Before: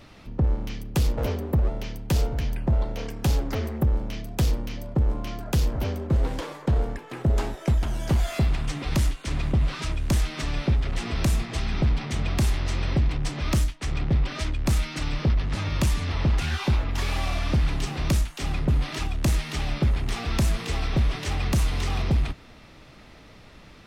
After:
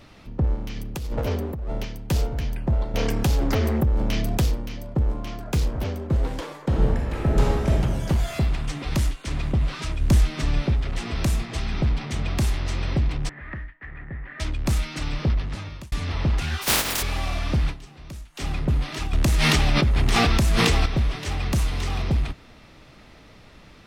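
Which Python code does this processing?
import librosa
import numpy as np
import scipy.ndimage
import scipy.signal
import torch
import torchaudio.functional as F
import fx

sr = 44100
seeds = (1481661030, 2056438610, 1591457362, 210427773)

y = fx.over_compress(x, sr, threshold_db=-26.0, ratio=-1.0, at=(0.76, 1.85))
y = fx.env_flatten(y, sr, amount_pct=70, at=(2.94, 4.47))
y = fx.doppler_dist(y, sr, depth_ms=0.43, at=(5.21, 5.91))
y = fx.reverb_throw(y, sr, start_s=6.67, length_s=1.04, rt60_s=1.6, drr_db=-3.0)
y = fx.low_shelf(y, sr, hz=360.0, db=6.0, at=(10.0, 10.68))
y = fx.ladder_lowpass(y, sr, hz=1900.0, resonance_pct=85, at=(13.29, 14.4))
y = fx.spec_flatten(y, sr, power=0.19, at=(16.61, 17.01), fade=0.02)
y = fx.env_flatten(y, sr, amount_pct=100, at=(19.13, 20.86))
y = fx.edit(y, sr, fx.fade_out_span(start_s=15.34, length_s=0.58),
    fx.fade_down_up(start_s=17.7, length_s=0.68, db=-15.5, fade_s=0.27, curve='exp'), tone=tone)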